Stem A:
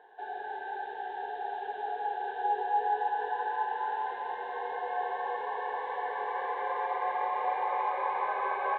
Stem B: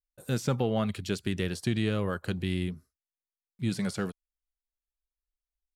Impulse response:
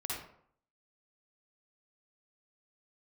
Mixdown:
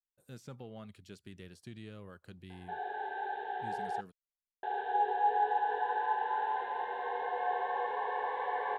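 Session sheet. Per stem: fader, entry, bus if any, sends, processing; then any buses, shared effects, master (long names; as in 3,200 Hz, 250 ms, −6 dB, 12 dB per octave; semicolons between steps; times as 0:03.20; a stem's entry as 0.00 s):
−0.5 dB, 2.50 s, muted 0:04.01–0:04.63, no send, no processing
−19.5 dB, 0.00 s, no send, no processing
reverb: not used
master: no processing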